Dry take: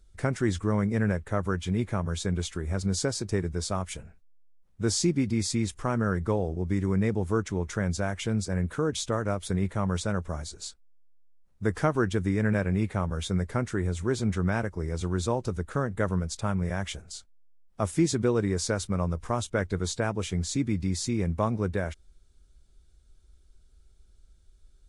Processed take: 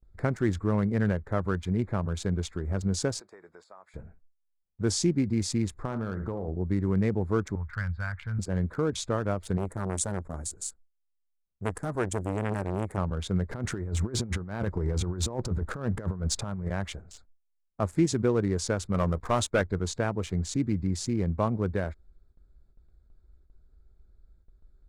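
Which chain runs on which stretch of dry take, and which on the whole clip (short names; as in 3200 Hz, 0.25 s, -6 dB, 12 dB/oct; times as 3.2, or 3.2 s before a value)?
3.2–3.94 HPF 750 Hz + compressor 5:1, threshold -44 dBFS
5.85–6.48 flutter echo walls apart 10.7 m, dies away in 0.34 s + compressor, threshold -27 dBFS
7.55–8.39 EQ curve 110 Hz 0 dB, 340 Hz -24 dB, 670 Hz -14 dB, 1500 Hz +4 dB, 4500 Hz -11 dB, 6400 Hz -30 dB + hard clip -22 dBFS
9.57–12.98 resonant high shelf 6100 Hz +13 dB, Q 1.5 + core saturation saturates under 1000 Hz
13.51–16.68 negative-ratio compressor -32 dBFS, ratio -0.5 + sample leveller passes 1
18.94–19.62 low shelf 250 Hz -7 dB + sample leveller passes 2
whole clip: Wiener smoothing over 15 samples; gate with hold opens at -51 dBFS; high shelf 9900 Hz -4.5 dB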